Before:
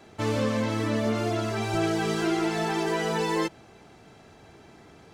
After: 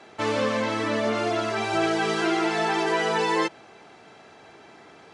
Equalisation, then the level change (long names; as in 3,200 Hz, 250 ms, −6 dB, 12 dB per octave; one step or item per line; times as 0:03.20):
high-pass filter 610 Hz 6 dB per octave
linear-phase brick-wall low-pass 11,000 Hz
high-shelf EQ 6,500 Hz −12 dB
+7.0 dB